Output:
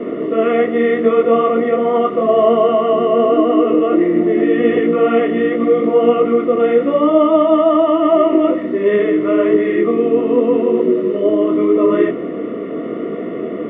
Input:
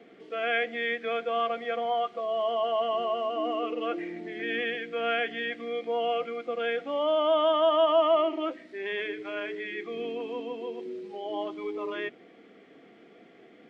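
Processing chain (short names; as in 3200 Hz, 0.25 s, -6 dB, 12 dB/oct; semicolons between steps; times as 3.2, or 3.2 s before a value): per-bin compression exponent 0.6; running mean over 55 samples; maximiser +28.5 dB; detuned doubles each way 29 cents; gain -1 dB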